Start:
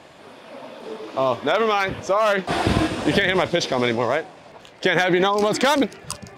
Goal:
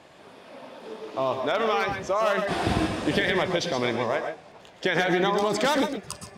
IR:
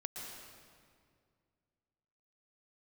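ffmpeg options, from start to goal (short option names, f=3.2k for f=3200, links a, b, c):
-filter_complex "[0:a]bandreject=f=238.6:t=h:w=4,bandreject=f=477.2:t=h:w=4,bandreject=f=715.8:t=h:w=4,bandreject=f=954.4:t=h:w=4,bandreject=f=1.193k:t=h:w=4,bandreject=f=1.4316k:t=h:w=4,bandreject=f=1.6702k:t=h:w=4,bandreject=f=1.9088k:t=h:w=4,bandreject=f=2.1474k:t=h:w=4,bandreject=f=2.386k:t=h:w=4,bandreject=f=2.6246k:t=h:w=4,bandreject=f=2.8632k:t=h:w=4,bandreject=f=3.1018k:t=h:w=4,bandreject=f=3.3404k:t=h:w=4,bandreject=f=3.579k:t=h:w=4,bandreject=f=3.8176k:t=h:w=4,bandreject=f=4.0562k:t=h:w=4,bandreject=f=4.2948k:t=h:w=4,bandreject=f=4.5334k:t=h:w=4,bandreject=f=4.772k:t=h:w=4,bandreject=f=5.0106k:t=h:w=4,bandreject=f=5.2492k:t=h:w=4,bandreject=f=5.4878k:t=h:w=4,bandreject=f=5.7264k:t=h:w=4,bandreject=f=5.965k:t=h:w=4,bandreject=f=6.2036k:t=h:w=4,bandreject=f=6.4422k:t=h:w=4,bandreject=f=6.6808k:t=h:w=4,bandreject=f=6.9194k:t=h:w=4,bandreject=f=7.158k:t=h:w=4,bandreject=f=7.3966k:t=h:w=4,bandreject=f=7.6352k:t=h:w=4,bandreject=f=7.8738k:t=h:w=4,bandreject=f=8.1124k:t=h:w=4,bandreject=f=8.351k:t=h:w=4,bandreject=f=8.5896k:t=h:w=4,bandreject=f=8.8282k:t=h:w=4,bandreject=f=9.0668k:t=h:w=4,bandreject=f=9.3054k:t=h:w=4[a];[1:a]atrim=start_sample=2205,atrim=end_sample=6174[b];[a][b]afir=irnorm=-1:irlink=0,volume=-1.5dB"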